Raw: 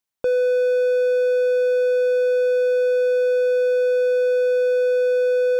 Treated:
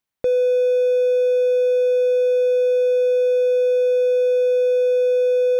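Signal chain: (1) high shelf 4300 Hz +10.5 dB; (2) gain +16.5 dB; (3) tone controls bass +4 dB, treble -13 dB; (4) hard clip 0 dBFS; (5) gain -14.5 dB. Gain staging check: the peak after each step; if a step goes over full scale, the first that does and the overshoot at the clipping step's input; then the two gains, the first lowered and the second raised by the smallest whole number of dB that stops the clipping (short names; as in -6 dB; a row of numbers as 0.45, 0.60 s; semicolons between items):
-13.0, +3.5, +4.0, 0.0, -14.5 dBFS; step 2, 4.0 dB; step 2 +12.5 dB, step 5 -10.5 dB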